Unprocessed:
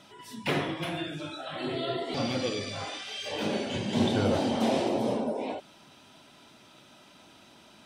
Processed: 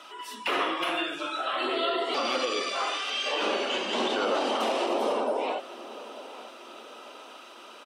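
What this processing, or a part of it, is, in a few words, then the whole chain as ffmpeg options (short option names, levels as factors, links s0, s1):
laptop speaker: -filter_complex "[0:a]asettb=1/sr,asplit=3[s0][s1][s2];[s0]atrim=end=3.104[s3];[s1]atrim=start=3.1:end=4.45,asetpts=PTS-STARTPTS,afade=t=in:d=0.004:c=qsin,afade=t=out:st=1.346:d=0.004:c=qsin,lowpass=8300[s4];[s2]atrim=start=4.446[s5];[s3][s4]acrossfade=d=0.004:c1=hsin:c2=qsin[s6];[s6][s5]acrossfade=d=0.004:c1=qsin:c2=hsin,highpass=f=330:w=0.5412,highpass=f=330:w=1.3066,equalizer=f=1200:t=o:w=0.49:g=12,equalizer=f=2800:t=o:w=0.26:g=7.5,alimiter=limit=0.0794:level=0:latency=1:release=50,asplit=2[s7][s8];[s8]adelay=892,lowpass=f=2000:p=1,volume=0.158,asplit=2[s9][s10];[s10]adelay=892,lowpass=f=2000:p=1,volume=0.51,asplit=2[s11][s12];[s12]adelay=892,lowpass=f=2000:p=1,volume=0.51,asplit=2[s13][s14];[s14]adelay=892,lowpass=f=2000:p=1,volume=0.51,asplit=2[s15][s16];[s16]adelay=892,lowpass=f=2000:p=1,volume=0.51[s17];[s7][s9][s11][s13][s15][s17]amix=inputs=6:normalize=0,volume=1.58"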